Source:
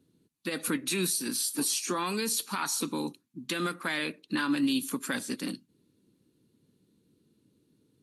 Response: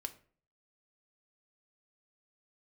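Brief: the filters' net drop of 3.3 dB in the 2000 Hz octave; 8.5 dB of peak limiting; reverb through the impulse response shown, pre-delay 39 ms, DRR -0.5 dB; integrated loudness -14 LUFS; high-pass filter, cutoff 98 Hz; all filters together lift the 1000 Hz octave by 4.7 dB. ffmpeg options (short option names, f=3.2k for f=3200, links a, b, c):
-filter_complex "[0:a]highpass=98,equalizer=f=1k:t=o:g=8,equalizer=f=2k:t=o:g=-8,alimiter=level_in=1dB:limit=-24dB:level=0:latency=1,volume=-1dB,asplit=2[a][b];[1:a]atrim=start_sample=2205,adelay=39[c];[b][c]afir=irnorm=-1:irlink=0,volume=2.5dB[d];[a][d]amix=inputs=2:normalize=0,volume=17dB"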